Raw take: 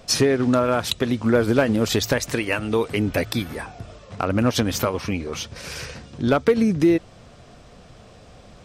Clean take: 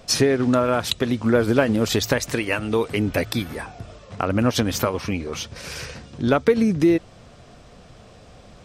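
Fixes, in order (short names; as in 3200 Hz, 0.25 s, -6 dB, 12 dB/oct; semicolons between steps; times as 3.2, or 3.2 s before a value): clip repair -9 dBFS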